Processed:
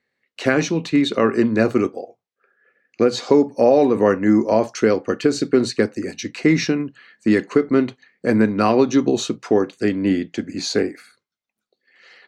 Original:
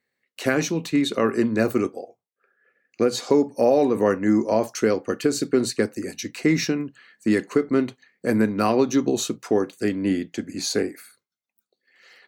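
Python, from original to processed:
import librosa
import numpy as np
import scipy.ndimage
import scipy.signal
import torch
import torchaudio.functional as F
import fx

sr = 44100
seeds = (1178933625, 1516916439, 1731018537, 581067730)

y = scipy.signal.sosfilt(scipy.signal.butter(2, 5400.0, 'lowpass', fs=sr, output='sos'), x)
y = F.gain(torch.from_numpy(y), 4.0).numpy()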